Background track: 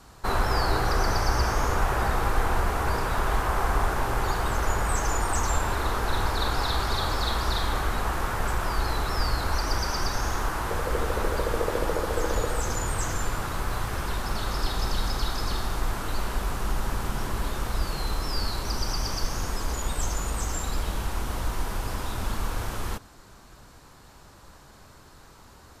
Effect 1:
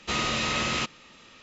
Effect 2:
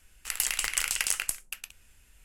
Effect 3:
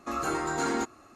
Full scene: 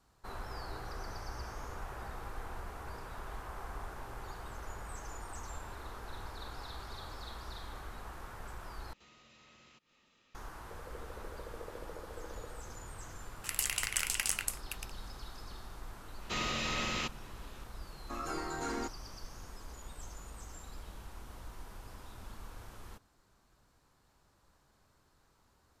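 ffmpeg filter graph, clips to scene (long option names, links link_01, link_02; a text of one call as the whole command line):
ffmpeg -i bed.wav -i cue0.wav -i cue1.wav -i cue2.wav -filter_complex "[1:a]asplit=2[link_01][link_02];[0:a]volume=-19dB[link_03];[link_01]acompressor=threshold=-41dB:ratio=4:attack=0.44:release=205:knee=1:detection=peak[link_04];[link_03]asplit=2[link_05][link_06];[link_05]atrim=end=8.934[link_07];[link_04]atrim=end=1.42,asetpts=PTS-STARTPTS,volume=-18dB[link_08];[link_06]atrim=start=10.346[link_09];[2:a]atrim=end=2.24,asetpts=PTS-STARTPTS,volume=-5dB,afade=type=in:duration=0.004:curve=hsin,afade=type=out:start_time=2.236:duration=0.004:curve=hsin,adelay=13190[link_10];[link_02]atrim=end=1.42,asetpts=PTS-STARTPTS,volume=-8dB,afade=type=in:duration=0.004:curve=hsin,afade=type=out:start_time=1.416:duration=0.004:curve=hsin,adelay=16220[link_11];[3:a]atrim=end=1.15,asetpts=PTS-STARTPTS,volume=-9dB,afade=type=in:duration=0.004:curve=hsin,afade=type=out:start_time=1.146:duration=0.004:curve=hsin,adelay=18030[link_12];[link_07][link_08]acrossfade=duration=0.004:curve1=hsin:curve2=hsin[link_13];[link_13][link_09]acrossfade=duration=0.004:curve1=hsin:curve2=hsin[link_14];[link_14][link_10][link_11][link_12]amix=inputs=4:normalize=0" out.wav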